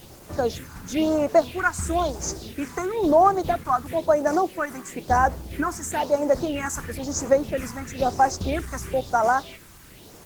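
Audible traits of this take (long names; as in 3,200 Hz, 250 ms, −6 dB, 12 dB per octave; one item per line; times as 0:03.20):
phaser sweep stages 4, 1 Hz, lowest notch 530–3,500 Hz
a quantiser's noise floor 8 bits, dither triangular
Opus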